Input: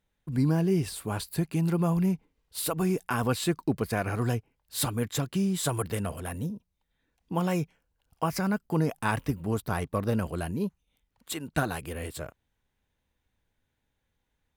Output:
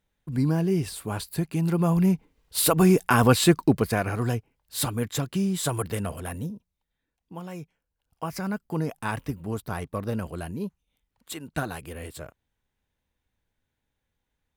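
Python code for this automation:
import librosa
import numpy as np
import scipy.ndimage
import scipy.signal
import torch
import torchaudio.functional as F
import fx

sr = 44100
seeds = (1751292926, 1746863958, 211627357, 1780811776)

y = fx.gain(x, sr, db=fx.line((1.56, 1.0), (2.61, 9.0), (3.55, 9.0), (4.15, 1.5), (6.32, 1.5), (7.45, -11.0), (8.49, -2.0)))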